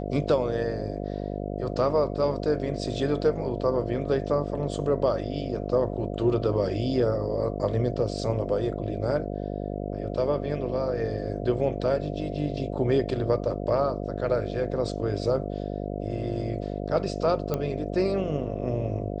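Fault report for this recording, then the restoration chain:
buzz 50 Hz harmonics 14 -32 dBFS
17.54 pop -14 dBFS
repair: de-click; de-hum 50 Hz, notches 14

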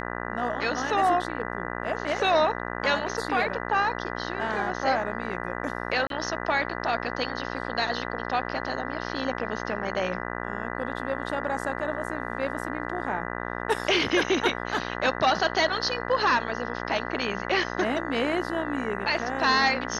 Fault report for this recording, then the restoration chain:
buzz 60 Hz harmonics 33 -33 dBFS
6.07–6.1 gap 32 ms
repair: de-hum 60 Hz, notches 33; interpolate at 6.07, 32 ms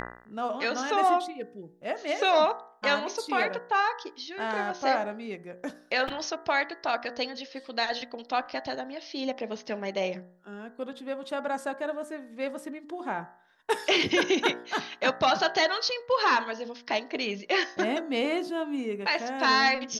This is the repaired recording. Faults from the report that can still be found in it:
none

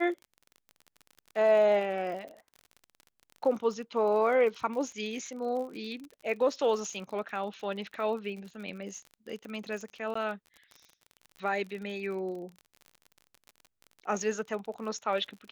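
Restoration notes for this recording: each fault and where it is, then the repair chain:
crackle 46/s -39 dBFS
10.14–10.15 gap 14 ms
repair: de-click; interpolate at 10.14, 14 ms

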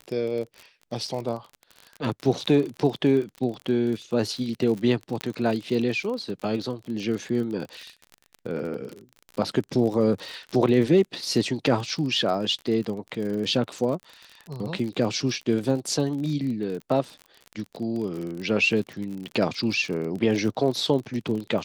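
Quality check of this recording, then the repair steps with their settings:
crackle 41/s -31 dBFS
5.21 pop -13 dBFS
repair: de-click

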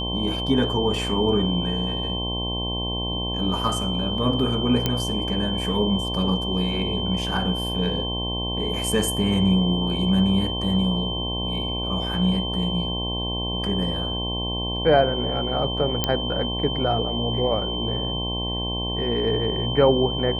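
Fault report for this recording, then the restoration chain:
buzz 60 Hz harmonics 18 -29 dBFS
tone 3100 Hz -28 dBFS
4.86 pop -7 dBFS
16.04 pop -6 dBFS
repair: de-click; de-hum 60 Hz, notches 18; notch 3100 Hz, Q 30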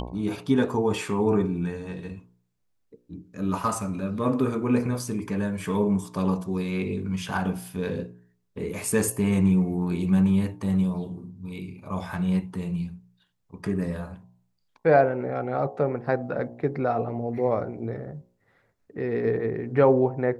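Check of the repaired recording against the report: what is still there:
none

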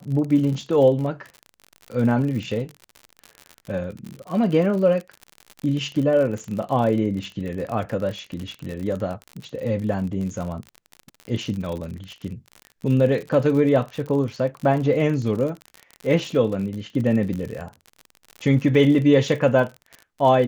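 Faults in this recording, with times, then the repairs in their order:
crackle 55/s -29 dBFS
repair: de-click

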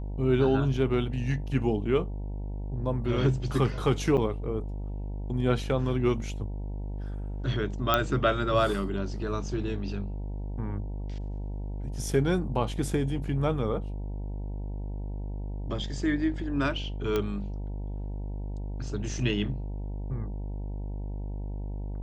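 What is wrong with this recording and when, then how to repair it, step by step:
buzz 50 Hz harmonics 19 -34 dBFS
4.17–4.18 gap 7 ms
7.94 pop -9 dBFS
17.16 pop -15 dBFS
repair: de-click; de-hum 50 Hz, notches 19; interpolate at 4.17, 7 ms

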